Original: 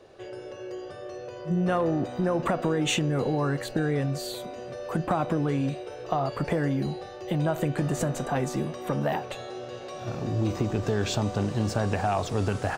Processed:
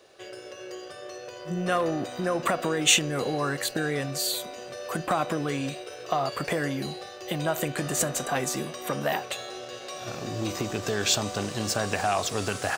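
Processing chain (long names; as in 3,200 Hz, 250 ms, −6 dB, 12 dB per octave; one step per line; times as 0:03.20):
spectral tilt +3 dB per octave
notch filter 890 Hz, Q 12
in parallel at −4 dB: dead-zone distortion −44.5 dBFS
on the sum: level −1.5 dB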